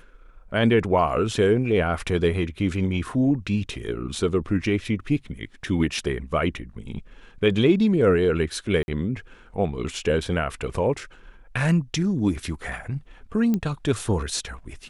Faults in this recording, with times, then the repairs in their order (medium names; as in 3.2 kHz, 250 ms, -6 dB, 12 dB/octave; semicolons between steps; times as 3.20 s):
8.83–8.88 s: dropout 51 ms
13.54 s: pop -13 dBFS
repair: de-click; interpolate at 8.83 s, 51 ms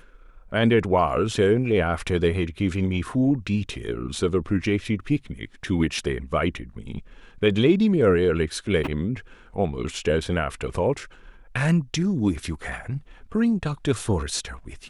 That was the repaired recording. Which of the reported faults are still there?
nothing left